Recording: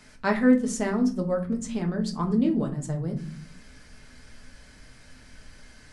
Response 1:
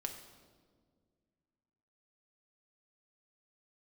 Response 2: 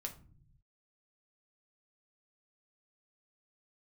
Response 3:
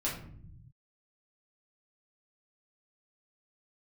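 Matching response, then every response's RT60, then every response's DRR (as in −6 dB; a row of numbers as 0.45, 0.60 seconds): 2; 1.8, 0.45, 0.65 seconds; 3.5, 2.0, −6.0 decibels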